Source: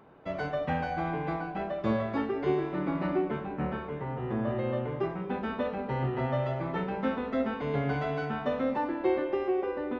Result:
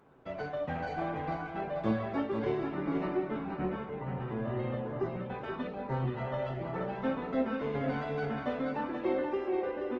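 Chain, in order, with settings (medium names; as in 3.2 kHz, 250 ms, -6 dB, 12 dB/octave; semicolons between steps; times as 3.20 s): flange 0.69 Hz, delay 6.8 ms, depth 3.9 ms, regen +55%; 4.75–6.90 s: LFO notch sine 1.1 Hz 210–3200 Hz; delay 480 ms -6 dB; Opus 16 kbps 48 kHz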